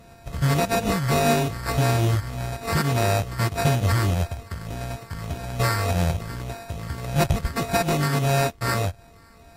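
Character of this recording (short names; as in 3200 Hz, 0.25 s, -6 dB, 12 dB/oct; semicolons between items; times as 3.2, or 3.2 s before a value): a buzz of ramps at a fixed pitch in blocks of 64 samples; phasing stages 6, 1.7 Hz, lowest notch 800–2700 Hz; aliases and images of a low sample rate 3200 Hz, jitter 0%; Vorbis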